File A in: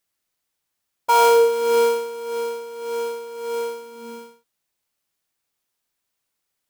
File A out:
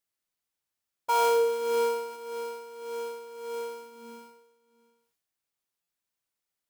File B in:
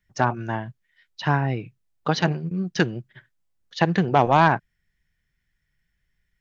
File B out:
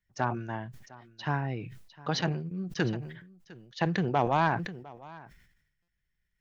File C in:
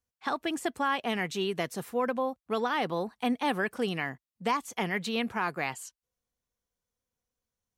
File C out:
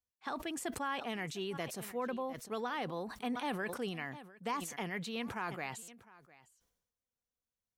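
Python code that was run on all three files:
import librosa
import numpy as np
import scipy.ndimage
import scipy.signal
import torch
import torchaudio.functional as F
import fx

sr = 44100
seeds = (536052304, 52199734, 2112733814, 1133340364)

y = x + 10.0 ** (-21.0 / 20.0) * np.pad(x, (int(705 * sr / 1000.0), 0))[:len(x)]
y = fx.buffer_glitch(y, sr, at_s=(5.82,), block=256, repeats=9)
y = fx.sustainer(y, sr, db_per_s=62.0)
y = y * 10.0 ** (-9.0 / 20.0)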